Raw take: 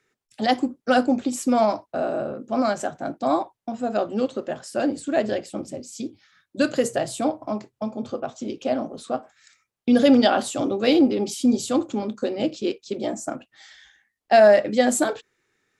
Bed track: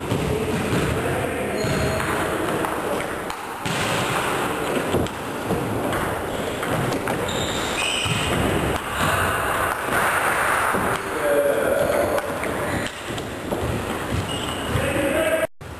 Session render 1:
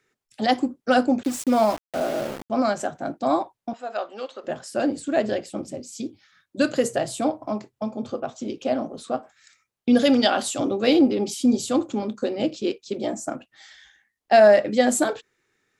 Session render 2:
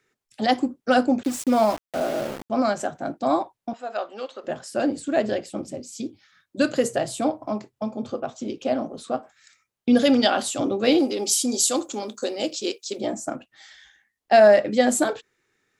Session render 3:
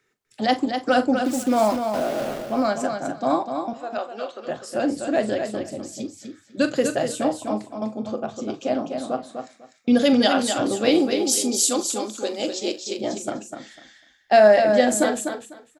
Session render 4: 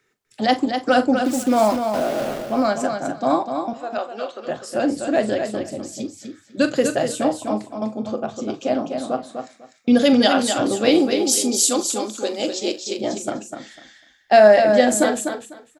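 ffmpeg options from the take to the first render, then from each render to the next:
-filter_complex "[0:a]asettb=1/sr,asplit=3[s0][s1][s2];[s0]atrim=end=1.234[s3];[s1]atrim=start=1.23:end=2.5,asetpts=PTS-STARTPTS,afade=t=in:d=0.004:c=qsin,afade=t=out:st=1.266:d=0.004:c=qsin,aeval=exprs='val(0)*gte(abs(val(0)),0.0282)':c=same[s4];[s2]atrim=start=2.496[s5];[s3][s4]acrossfade=d=0.004:c1=hsin:c2=qsin[s6];[s6][s5]acrossfade=d=0.004:c1=qsin:c2=hsin,asettb=1/sr,asplit=3[s7][s8][s9];[s7]atrim=end=3.734[s10];[s8]atrim=start=3.73:end=4.44,asetpts=PTS-STARTPTS,afade=t=in:d=0.004:c=qsin,afade=t=out:st=0.706:d=0.004:c=qsin,highpass=750,lowpass=5200[s11];[s9]atrim=start=4.436[s12];[s10][s11]acrossfade=d=0.004:c1=hsin:c2=qsin[s13];[s13][s12]acrossfade=d=0.004:c1=qsin:c2=hsin,asettb=1/sr,asplit=3[s14][s15][s16];[s14]atrim=end=9.994[s17];[s15]atrim=start=9.99:end=10.59,asetpts=PTS-STARTPTS,afade=t=in:d=0.004:c=qsin,afade=t=out:st=0.596:d=0.004:c=qsin,tiltshelf=f=1500:g=-3.5[s18];[s16]atrim=start=10.586[s19];[s17][s18]acrossfade=d=0.004:c1=hsin:c2=qsin[s20];[s20][s19]acrossfade=d=0.004:c1=qsin:c2=hsin"
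-filter_complex "[0:a]asplit=3[s0][s1][s2];[s0]afade=t=out:st=10.98:d=0.02[s3];[s1]bass=f=250:g=-14,treble=f=4000:g=14,afade=t=in:st=10.98:d=0.02,afade=t=out:st=12.99:d=0.02[s4];[s2]afade=t=in:st=12.99:d=0.02[s5];[s3][s4][s5]amix=inputs=3:normalize=0"
-filter_complex "[0:a]asplit=2[s0][s1];[s1]adelay=42,volume=0.224[s2];[s0][s2]amix=inputs=2:normalize=0,asplit=2[s3][s4];[s4]aecho=0:1:249|498|747:0.473|0.0852|0.0153[s5];[s3][s5]amix=inputs=2:normalize=0"
-af "volume=1.33"

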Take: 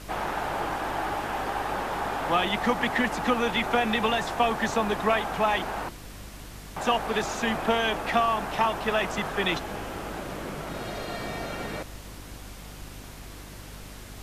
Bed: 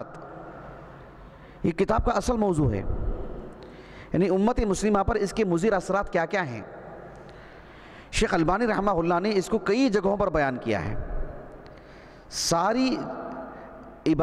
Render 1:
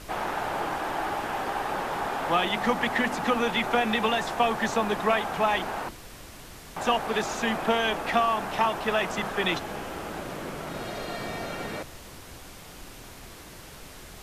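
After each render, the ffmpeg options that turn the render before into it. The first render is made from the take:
-af "bandreject=f=50:t=h:w=4,bandreject=f=100:t=h:w=4,bandreject=f=150:t=h:w=4,bandreject=f=200:t=h:w=4,bandreject=f=250:t=h:w=4,bandreject=f=300:t=h:w=4"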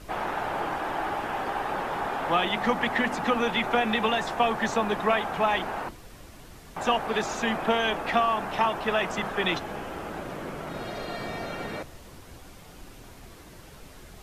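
-af "afftdn=nr=6:nf=-45"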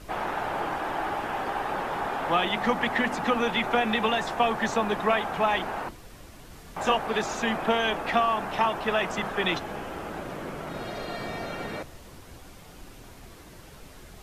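-filter_complex "[0:a]asettb=1/sr,asplit=3[s0][s1][s2];[s0]atrim=end=6.474[s3];[s1]atrim=start=6.47:end=6.95,asetpts=PTS-STARTPTS,afade=t=in:d=0.004:c=qsin,afade=t=out:st=0.476:d=0.004:c=qsin,asplit=2[s4][s5];[s5]adelay=27,volume=0.501[s6];[s4][s6]amix=inputs=2:normalize=0,atrim=end_sample=21168[s7];[s2]atrim=start=6.946[s8];[s3][s7]acrossfade=d=0.004:c1=hsin:c2=qsin[s9];[s9][s8]acrossfade=d=0.004:c1=qsin:c2=hsin"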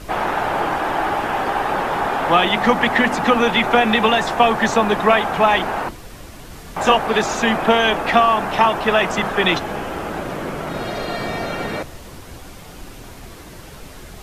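-af "volume=2.99"

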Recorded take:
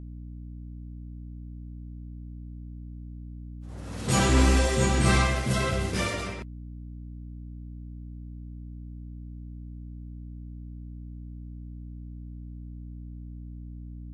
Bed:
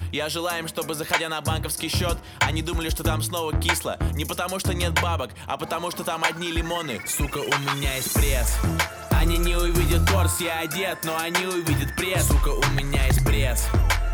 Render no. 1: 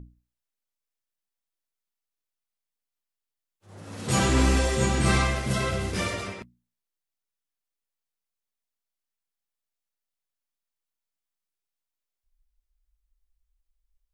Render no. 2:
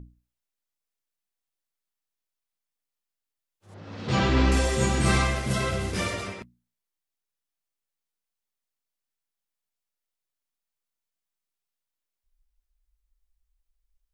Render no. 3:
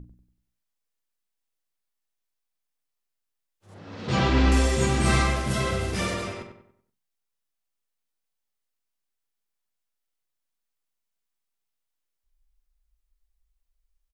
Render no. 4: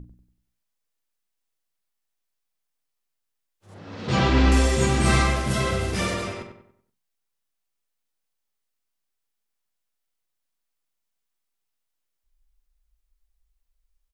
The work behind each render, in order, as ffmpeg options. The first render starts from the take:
-af "bandreject=f=60:t=h:w=6,bandreject=f=120:t=h:w=6,bandreject=f=180:t=h:w=6,bandreject=f=240:t=h:w=6,bandreject=f=300:t=h:w=6"
-filter_complex "[0:a]asettb=1/sr,asplit=3[s0][s1][s2];[s0]atrim=end=3.744[s3];[s1]atrim=start=3.74:end=4.52,asetpts=PTS-STARTPTS,afade=t=in:d=0.004:c=qsin,afade=t=out:st=0.776:d=0.004:c=qsin,lowpass=f=4800:w=0.5412,lowpass=f=4800:w=1.3066[s4];[s2]atrim=start=4.516[s5];[s3][s4]acrossfade=d=0.004:c1=hsin:c2=qsin[s6];[s6][s5]acrossfade=d=0.004:c1=qsin:c2=hsin"
-filter_complex "[0:a]asplit=2[s0][s1];[s1]adelay=43,volume=0.282[s2];[s0][s2]amix=inputs=2:normalize=0,asplit=2[s3][s4];[s4]adelay=95,lowpass=f=2600:p=1,volume=0.422,asplit=2[s5][s6];[s6]adelay=95,lowpass=f=2600:p=1,volume=0.41,asplit=2[s7][s8];[s8]adelay=95,lowpass=f=2600:p=1,volume=0.41,asplit=2[s9][s10];[s10]adelay=95,lowpass=f=2600:p=1,volume=0.41,asplit=2[s11][s12];[s12]adelay=95,lowpass=f=2600:p=1,volume=0.41[s13];[s5][s7][s9][s11][s13]amix=inputs=5:normalize=0[s14];[s3][s14]amix=inputs=2:normalize=0"
-af "volume=1.26"

